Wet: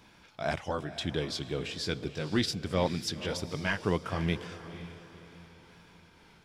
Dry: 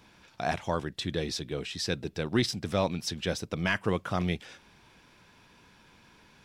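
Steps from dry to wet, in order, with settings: sawtooth pitch modulation -1.5 st, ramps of 714 ms; echo that smears into a reverb 501 ms, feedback 41%, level -13 dB

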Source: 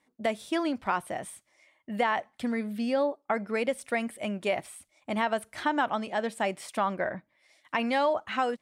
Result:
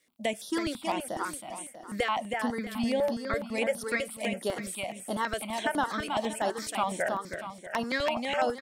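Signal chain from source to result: high-pass 160 Hz 12 dB/octave; treble shelf 3 kHz +9 dB; crackle 58 per s -57 dBFS; feedback delay 320 ms, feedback 41%, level -5 dB; stepped phaser 12 Hz 240–7900 Hz

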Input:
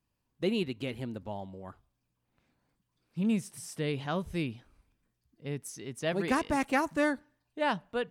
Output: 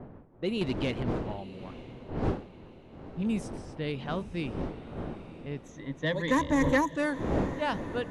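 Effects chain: wind noise 390 Hz -36 dBFS; level-controlled noise filter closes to 1.5 kHz, open at -24 dBFS; 0.61–1.03 s: waveshaping leveller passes 2; 5.63–6.96 s: rippled EQ curve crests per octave 1.1, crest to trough 18 dB; saturation -15.5 dBFS, distortion -19 dB; Chebyshev low-pass 11 kHz, order 4; on a send: echo that smears into a reverb 907 ms, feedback 42%, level -15.5 dB

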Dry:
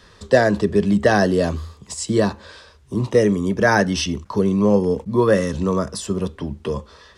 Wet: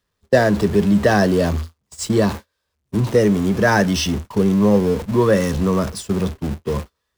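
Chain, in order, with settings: jump at every zero crossing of -25 dBFS; gate -24 dBFS, range -45 dB; tone controls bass +3 dB, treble 0 dB; trim -1 dB

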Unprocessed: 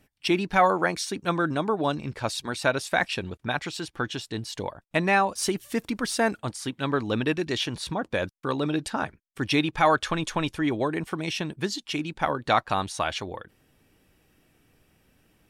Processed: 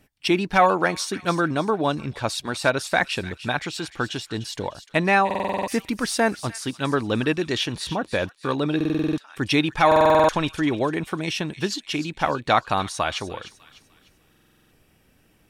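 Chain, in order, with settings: feedback echo behind a high-pass 300 ms, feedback 38%, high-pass 2 kHz, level -12 dB; buffer glitch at 5.26/8.76/9.87/14.29 s, samples 2048, times 8; trim +3 dB

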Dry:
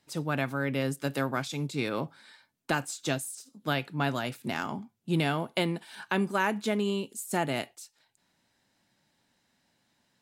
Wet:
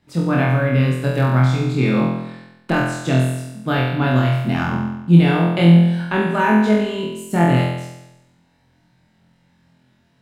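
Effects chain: tone controls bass +12 dB, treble -10 dB; hum notches 50/100/150/200 Hz; on a send: flutter echo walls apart 4 m, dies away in 0.92 s; on the sum: trim +4.5 dB

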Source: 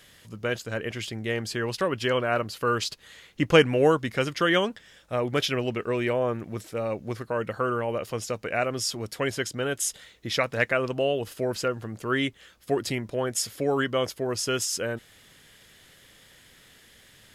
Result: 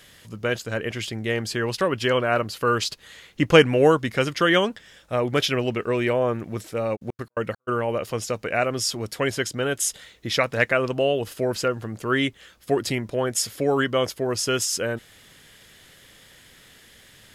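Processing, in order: 6.95–7.67 s: trance gate ".x.xx..x" 169 bpm -60 dB; trim +3.5 dB

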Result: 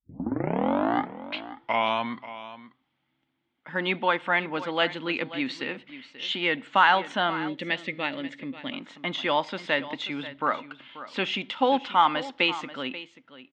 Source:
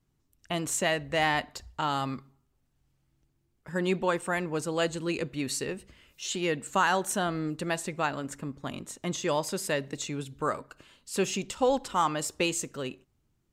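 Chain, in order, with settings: tape start-up on the opening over 2.37 s; cabinet simulation 250–3800 Hz, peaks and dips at 260 Hz +6 dB, 410 Hz -9 dB, 860 Hz +6 dB, 1.4 kHz +4 dB, 2.1 kHz +9 dB, 3.3 kHz +10 dB; on a send: delay 535 ms -15 dB; on the sum: time-frequency box 7.48–8.73 s, 640–1700 Hz -11 dB; trim +2 dB

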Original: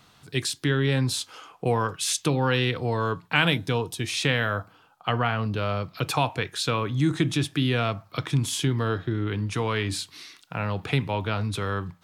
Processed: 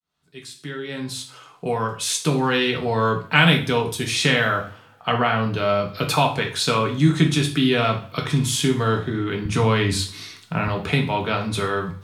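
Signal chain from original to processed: fade-in on the opening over 3.08 s; 9.45–10.68 s: bass shelf 200 Hz +10 dB; two-slope reverb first 0.38 s, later 1.6 s, from -27 dB, DRR 1 dB; trim +3.5 dB

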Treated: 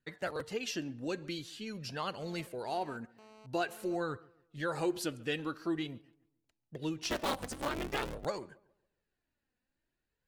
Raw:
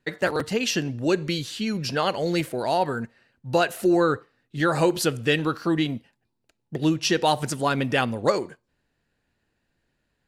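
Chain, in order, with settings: 7.01–8.25 s: cycle switcher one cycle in 3, inverted; flange 0.47 Hz, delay 0.6 ms, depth 3.5 ms, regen +41%; filtered feedback delay 139 ms, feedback 36%, low-pass 2.2 kHz, level -22.5 dB; 2.19–3.96 s: mobile phone buzz -48 dBFS; trim -9 dB

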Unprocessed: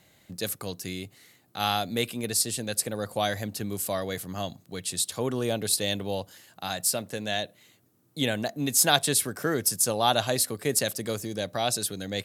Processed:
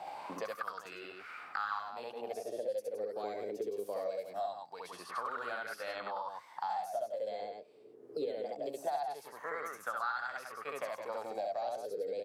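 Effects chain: tilt EQ +1.5 dB/octave; loudspeakers at several distances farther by 23 m 0 dB, 57 m -7 dB; formant shift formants +3 st; wah-wah 0.22 Hz 420–1400 Hz, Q 8.3; three bands compressed up and down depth 100%; trim +1 dB

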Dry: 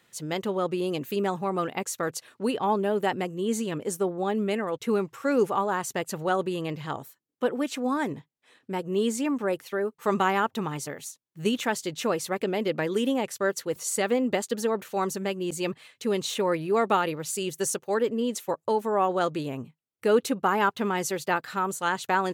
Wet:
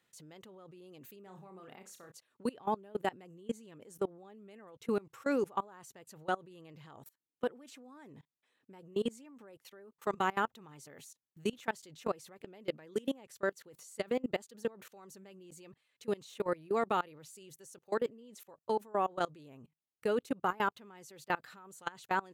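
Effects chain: level held to a coarse grid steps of 24 dB; 1.23–2.12 s: flutter echo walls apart 5.5 m, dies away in 0.27 s; trim -5.5 dB

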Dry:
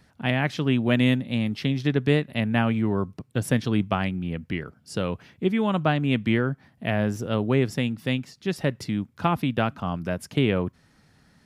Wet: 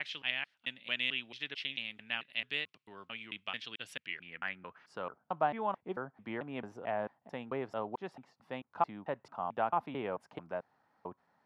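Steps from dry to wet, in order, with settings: slices played last to first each 221 ms, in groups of 3; band-pass sweep 2.9 kHz -> 860 Hz, 4.00–5.15 s; trim -1.5 dB

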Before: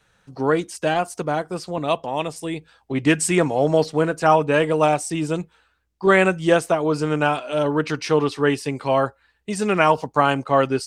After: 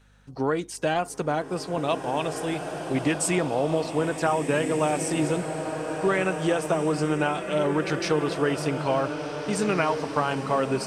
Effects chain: compression, threshold -19 dBFS, peak gain reduction 8.5 dB; hum 50 Hz, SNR 32 dB; swelling reverb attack 1880 ms, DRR 5.5 dB; trim -1.5 dB

